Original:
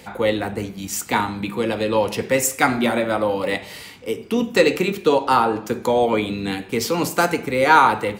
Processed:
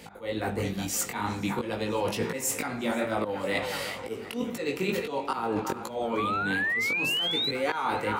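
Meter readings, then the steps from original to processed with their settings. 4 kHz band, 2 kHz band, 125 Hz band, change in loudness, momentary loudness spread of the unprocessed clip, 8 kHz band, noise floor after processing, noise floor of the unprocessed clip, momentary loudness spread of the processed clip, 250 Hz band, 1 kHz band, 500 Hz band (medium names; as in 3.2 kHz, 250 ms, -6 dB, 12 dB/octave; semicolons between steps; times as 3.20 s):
-2.0 dB, -6.0 dB, -6.5 dB, -9.0 dB, 10 LU, -6.0 dB, -40 dBFS, -40 dBFS, 8 LU, -9.0 dB, -12.0 dB, -11.0 dB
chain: on a send: band-passed feedback delay 367 ms, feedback 56%, band-pass 1.2 kHz, level -14 dB; on the sum: slow attack 249 ms; chorus 2.2 Hz, delay 17.5 ms, depth 4.2 ms; level rider gain up to 5 dB; painted sound rise, 6.17–7.51 s, 1.1–4.1 kHz -20 dBFS; reverse; compression 6:1, threshold -26 dBFS, peak gain reduction 13.5 dB; reverse; modulated delay 487 ms, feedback 59%, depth 85 cents, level -22.5 dB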